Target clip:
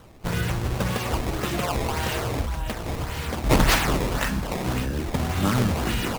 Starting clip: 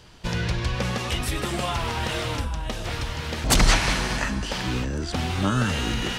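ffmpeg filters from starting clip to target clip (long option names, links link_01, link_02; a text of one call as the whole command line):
ffmpeg -i in.wav -filter_complex "[0:a]acrusher=samples=17:mix=1:aa=0.000001:lfo=1:lforange=27.2:lforate=1.8,asplit=2[link_01][link_02];[link_02]asetrate=37084,aresample=44100,atempo=1.18921,volume=-7dB[link_03];[link_01][link_03]amix=inputs=2:normalize=0" out.wav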